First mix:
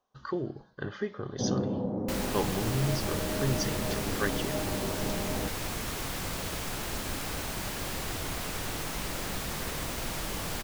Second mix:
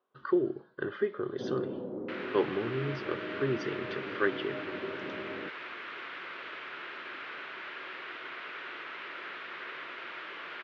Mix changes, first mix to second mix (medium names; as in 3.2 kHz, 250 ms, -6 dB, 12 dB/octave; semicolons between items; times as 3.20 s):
first sound -6.0 dB; second sound: add band-pass filter 1.9 kHz, Q 1; master: add cabinet simulation 190–3300 Hz, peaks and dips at 200 Hz -5 dB, 370 Hz +9 dB, 790 Hz -7 dB, 1.4 kHz +4 dB